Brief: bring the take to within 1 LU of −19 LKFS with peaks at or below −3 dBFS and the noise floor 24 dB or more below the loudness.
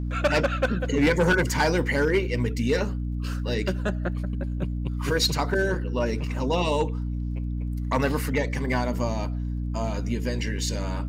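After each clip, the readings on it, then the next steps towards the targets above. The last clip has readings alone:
crackle rate 31 per second; mains hum 60 Hz; hum harmonics up to 300 Hz; level of the hum −26 dBFS; integrated loudness −26.0 LKFS; sample peak −12.5 dBFS; target loudness −19.0 LKFS
→ click removal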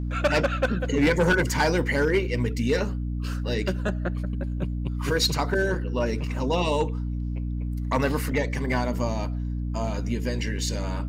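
crackle rate 0.090 per second; mains hum 60 Hz; hum harmonics up to 300 Hz; level of the hum −26 dBFS
→ hum removal 60 Hz, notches 5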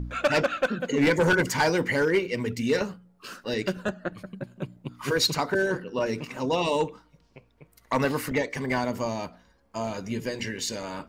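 mains hum none found; integrated loudness −27.0 LKFS; sample peak −13.5 dBFS; target loudness −19.0 LKFS
→ level +8 dB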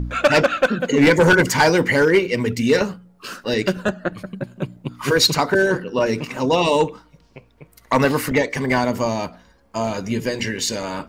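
integrated loudness −19.0 LKFS; sample peak −5.5 dBFS; background noise floor −55 dBFS

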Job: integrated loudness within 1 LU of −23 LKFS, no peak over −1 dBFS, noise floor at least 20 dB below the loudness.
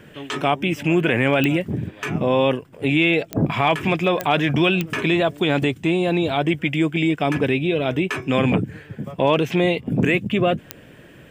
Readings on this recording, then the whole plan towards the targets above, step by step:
number of clicks 5; integrated loudness −20.5 LKFS; sample peak −6.5 dBFS; target loudness −23.0 LKFS
→ click removal
level −2.5 dB

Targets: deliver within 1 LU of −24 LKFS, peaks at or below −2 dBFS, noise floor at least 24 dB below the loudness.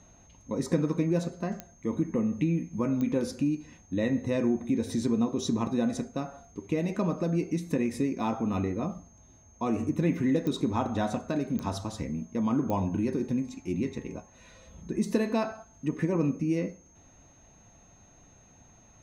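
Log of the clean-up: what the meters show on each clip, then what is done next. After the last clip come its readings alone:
number of clicks 5; interfering tone 6,400 Hz; level of the tone −59 dBFS; integrated loudness −30.0 LKFS; sample peak −13.0 dBFS; target loudness −24.0 LKFS
→ click removal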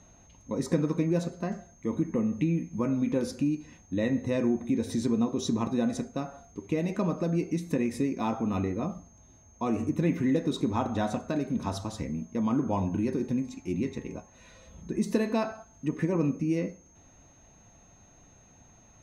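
number of clicks 0; interfering tone 6,400 Hz; level of the tone −59 dBFS
→ notch filter 6,400 Hz, Q 30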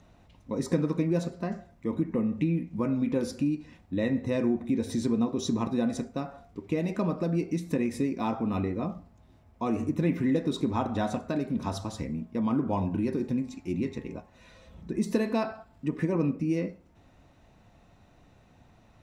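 interfering tone none found; integrated loudness −30.0 LKFS; sample peak −13.0 dBFS; target loudness −24.0 LKFS
→ level +6 dB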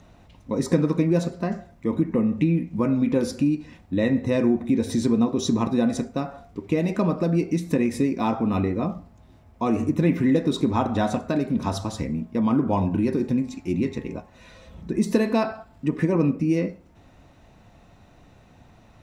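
integrated loudness −24.0 LKFS; sample peak −7.0 dBFS; background noise floor −53 dBFS

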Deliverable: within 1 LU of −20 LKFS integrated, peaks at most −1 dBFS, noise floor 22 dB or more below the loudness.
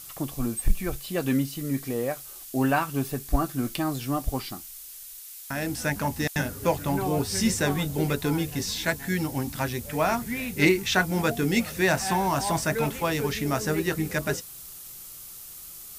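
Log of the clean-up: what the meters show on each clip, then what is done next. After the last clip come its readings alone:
background noise floor −43 dBFS; target noise floor −49 dBFS; integrated loudness −27.0 LKFS; sample peak −6.0 dBFS; target loudness −20.0 LKFS
→ noise reduction from a noise print 6 dB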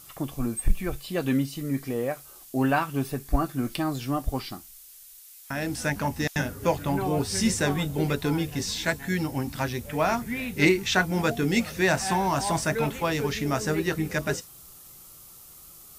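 background noise floor −49 dBFS; integrated loudness −27.0 LKFS; sample peak −6.0 dBFS; target loudness −20.0 LKFS
→ level +7 dB
brickwall limiter −1 dBFS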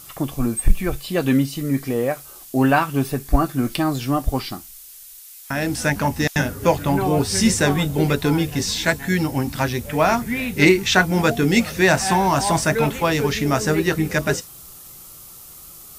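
integrated loudness −20.0 LKFS; sample peak −1.0 dBFS; background noise floor −42 dBFS

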